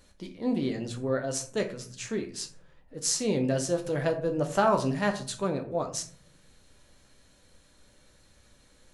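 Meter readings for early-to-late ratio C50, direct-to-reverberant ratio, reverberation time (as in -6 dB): 12.0 dB, 4.0 dB, 0.50 s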